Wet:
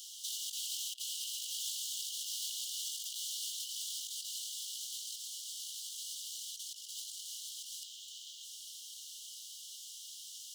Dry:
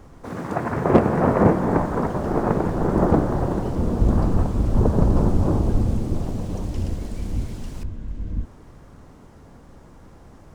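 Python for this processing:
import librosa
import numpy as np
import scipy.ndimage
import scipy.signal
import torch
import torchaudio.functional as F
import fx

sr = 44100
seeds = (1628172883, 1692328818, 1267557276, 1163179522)

y = scipy.signal.sosfilt(scipy.signal.cheby1(10, 1.0, 2900.0, 'highpass', fs=sr, output='sos'), x)
y = fx.over_compress(y, sr, threshold_db=-57.0, ratio=-0.5)
y = y * 10.0 ** (16.0 / 20.0)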